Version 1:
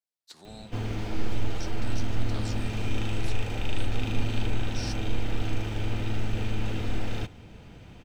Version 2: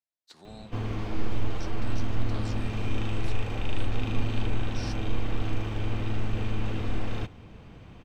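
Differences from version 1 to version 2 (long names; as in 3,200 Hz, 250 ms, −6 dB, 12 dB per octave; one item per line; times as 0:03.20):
background: remove Butterworth band-reject 1,100 Hz, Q 7.9
master: add high-shelf EQ 4,800 Hz −9 dB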